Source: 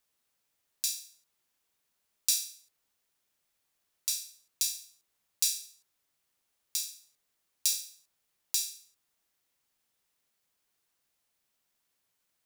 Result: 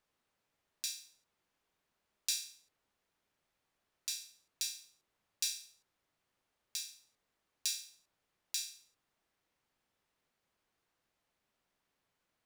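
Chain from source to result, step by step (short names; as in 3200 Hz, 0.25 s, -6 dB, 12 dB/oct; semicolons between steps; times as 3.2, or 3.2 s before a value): LPF 1700 Hz 6 dB/oct; gain +4 dB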